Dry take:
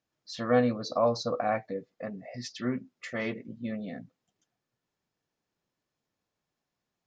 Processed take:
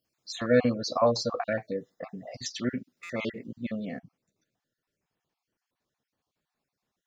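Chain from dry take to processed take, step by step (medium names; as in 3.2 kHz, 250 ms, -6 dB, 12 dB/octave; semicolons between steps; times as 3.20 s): random holes in the spectrogram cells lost 34%; treble shelf 4.6 kHz +9 dB, from 3.99 s -2.5 dB; buffer glitch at 3.03 s, samples 256, times 10; trim +2.5 dB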